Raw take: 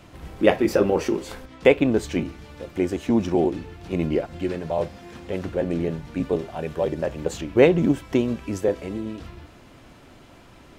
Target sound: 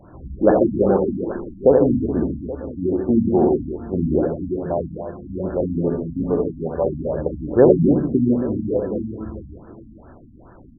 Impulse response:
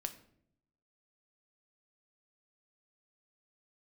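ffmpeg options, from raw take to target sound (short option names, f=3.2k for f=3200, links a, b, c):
-filter_complex "[0:a]aecho=1:1:66|82|144|271|715|827:0.531|0.501|0.422|0.316|0.1|0.141,asplit=2[a][b];[1:a]atrim=start_sample=2205[c];[b][c]afir=irnorm=-1:irlink=0,volume=-9.5dB[d];[a][d]amix=inputs=2:normalize=0,afftfilt=real='re*lt(b*sr/1024,290*pow(1800/290,0.5+0.5*sin(2*PI*2.4*pts/sr)))':imag='im*lt(b*sr/1024,290*pow(1800/290,0.5+0.5*sin(2*PI*2.4*pts/sr)))':win_size=1024:overlap=0.75"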